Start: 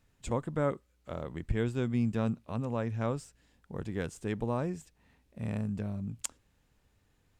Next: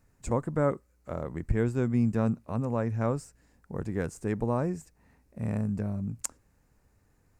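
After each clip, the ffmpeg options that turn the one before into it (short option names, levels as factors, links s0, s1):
-af "equalizer=f=3300:t=o:w=0.7:g=-14.5,volume=1.58"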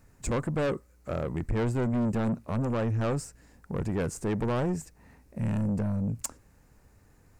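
-af "asoftclip=type=tanh:threshold=0.0282,volume=2.24"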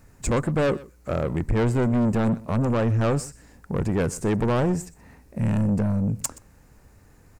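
-af "aecho=1:1:124:0.0944,volume=2"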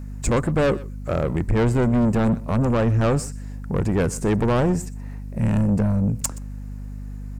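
-af "aeval=exprs='val(0)+0.02*(sin(2*PI*50*n/s)+sin(2*PI*2*50*n/s)/2+sin(2*PI*3*50*n/s)/3+sin(2*PI*4*50*n/s)/4+sin(2*PI*5*50*n/s)/5)':c=same,volume=1.33"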